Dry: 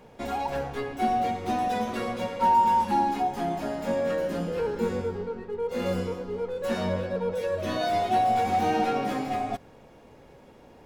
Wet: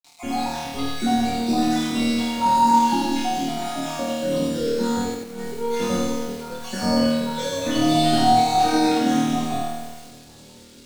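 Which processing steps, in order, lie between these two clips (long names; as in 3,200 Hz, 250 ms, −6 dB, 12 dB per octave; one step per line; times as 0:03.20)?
time-frequency cells dropped at random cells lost 54%
0:06.92–0:08.24: comb filter 7.4 ms, depth 90%
flutter between parallel walls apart 4.4 metres, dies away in 1.3 s
bit reduction 9 bits
0:05.14–0:05.55: compressor whose output falls as the input rises −32 dBFS, ratio −0.5
octave-band graphic EQ 250/500/2,000/4,000/8,000 Hz +7/−6/−3/+10/+9 dB
convolution reverb RT60 0.35 s, pre-delay 7 ms, DRR 10 dB
feedback echo at a low word length 90 ms, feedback 35%, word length 7 bits, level −3 dB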